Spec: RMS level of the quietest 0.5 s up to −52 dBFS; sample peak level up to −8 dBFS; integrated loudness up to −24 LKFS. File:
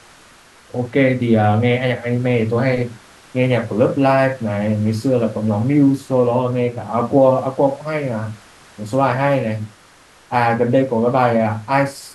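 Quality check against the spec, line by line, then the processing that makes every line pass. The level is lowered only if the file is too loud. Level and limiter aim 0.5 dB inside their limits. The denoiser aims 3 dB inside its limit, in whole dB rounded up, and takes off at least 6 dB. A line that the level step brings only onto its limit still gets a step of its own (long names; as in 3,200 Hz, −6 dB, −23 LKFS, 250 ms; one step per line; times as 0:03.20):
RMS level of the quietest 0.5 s −48 dBFS: out of spec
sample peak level −2.0 dBFS: out of spec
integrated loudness −17.5 LKFS: out of spec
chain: level −7 dB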